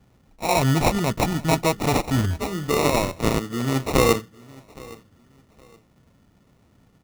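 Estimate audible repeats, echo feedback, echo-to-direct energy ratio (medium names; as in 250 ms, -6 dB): 2, 27%, -22.0 dB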